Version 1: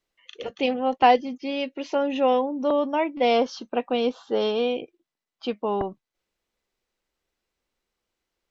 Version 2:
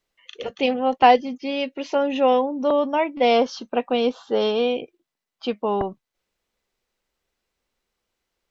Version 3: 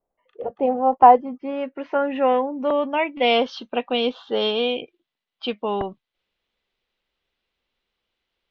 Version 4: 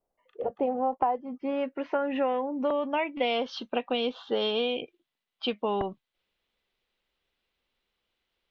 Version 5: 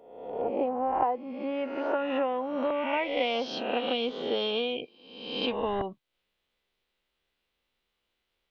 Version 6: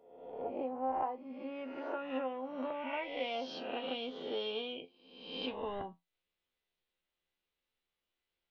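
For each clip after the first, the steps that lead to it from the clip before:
parametric band 320 Hz −4 dB 0.25 octaves; level +3 dB
low-pass filter sweep 740 Hz → 3,400 Hz, 0:00.39–0:03.51; level −2 dB
downward compressor 8 to 1, threshold −22 dBFS, peak gain reduction 15.5 dB; level −1.5 dB
peak hold with a rise ahead of every peak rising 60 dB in 0.94 s; level −2.5 dB
tuned comb filter 87 Hz, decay 0.18 s, harmonics all, mix 80%; level −4 dB

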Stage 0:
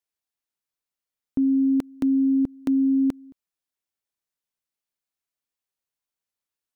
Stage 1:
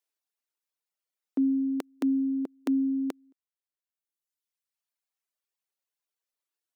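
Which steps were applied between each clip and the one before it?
reverb reduction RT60 1.8 s
high-pass filter 290 Hz 24 dB per octave
level +1.5 dB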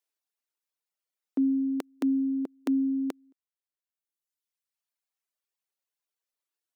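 no processing that can be heard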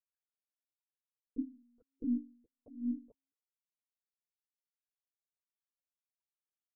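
spectral envelope exaggerated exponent 3
LFO wah 1.3 Hz 270–1,700 Hz, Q 12
one-pitch LPC vocoder at 8 kHz 240 Hz
level −4 dB

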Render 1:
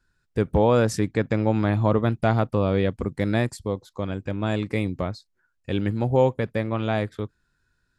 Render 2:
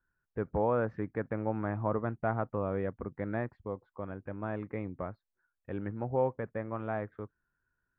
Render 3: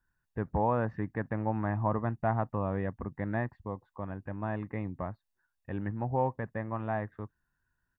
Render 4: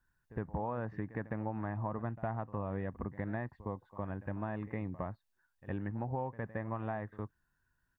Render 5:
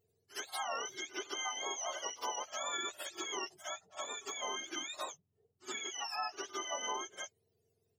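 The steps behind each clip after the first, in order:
low-pass filter 1,700 Hz 24 dB per octave; low-shelf EQ 440 Hz −7.5 dB; level −6.5 dB
comb filter 1.1 ms, depth 44%; level +1.5 dB
downward compressor, threshold −35 dBFS, peak gain reduction 11 dB; echo ahead of the sound 61 ms −17 dB; level +1 dB
frequency axis turned over on the octave scale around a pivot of 820 Hz; level +2 dB

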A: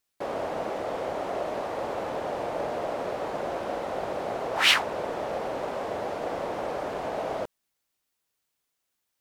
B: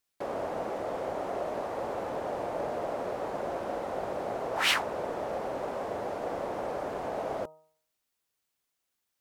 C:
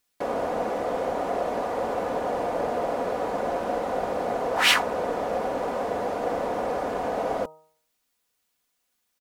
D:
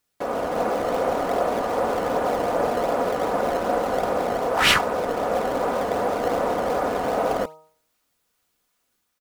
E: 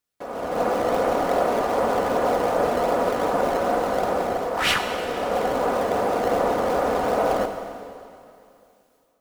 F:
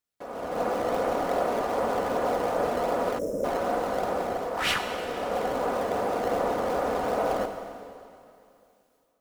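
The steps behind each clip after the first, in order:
hum removal 156.7 Hz, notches 8; dynamic equaliser 3,300 Hz, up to −5 dB, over −48 dBFS, Q 0.72; level −2 dB
comb filter 4.1 ms, depth 38%; level +6 dB
parametric band 1,300 Hz +4.5 dB 0.38 octaves; automatic gain control gain up to 4 dB; in parallel at −11 dB: sample-and-hold swept by an LFO 21×, swing 160% 2.6 Hz; on the sum: level −1.5 dB
automatic gain control gain up to 10.5 dB; convolution reverb RT60 2.6 s, pre-delay 37 ms, DRR 6.5 dB; level −8 dB
gain on a spectral selection 0:03.19–0:03.44, 660–5,100 Hz −24 dB; level −5 dB

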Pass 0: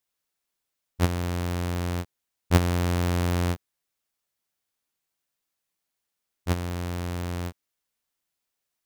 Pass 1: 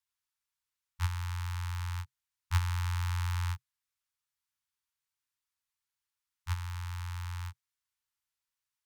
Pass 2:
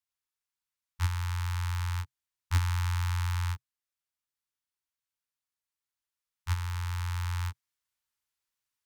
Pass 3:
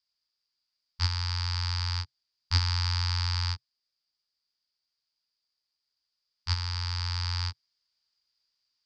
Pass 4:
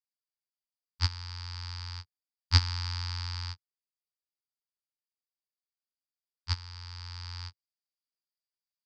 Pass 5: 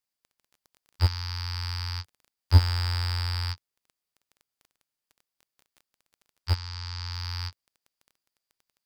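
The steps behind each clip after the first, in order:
harmonic generator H 5 −26 dB, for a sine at −9 dBFS; Chebyshev band-stop filter 130–880 Hz, order 5; high-shelf EQ 11,000 Hz −5.5 dB; level −7 dB
speech leveller 2 s; leveller curve on the samples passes 1
low-pass with resonance 4,800 Hz, resonance Q 15
expander for the loud parts 2.5 to 1, over −38 dBFS; level +4.5 dB
surface crackle 15 per second −50 dBFS; slew-rate limiting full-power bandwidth 100 Hz; level +7.5 dB

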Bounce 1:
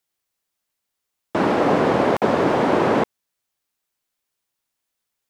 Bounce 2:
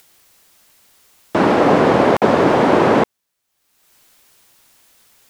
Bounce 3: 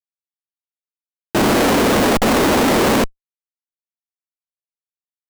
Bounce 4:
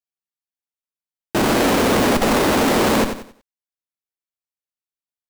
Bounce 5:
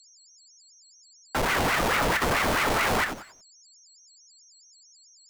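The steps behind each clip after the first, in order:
upward compression, threshold −40 dBFS; level +5 dB
low shelf with overshoot 160 Hz −10 dB, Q 3; comparator with hysteresis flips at −22.5 dBFS; level +1.5 dB
feedback echo at a low word length 91 ms, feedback 35%, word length 8 bits, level −8 dB; level −2.5 dB
steady tone 6,000 Hz −45 dBFS; ring modulator whose carrier an LFO sweeps 990 Hz, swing 80%, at 4.6 Hz; level −5 dB

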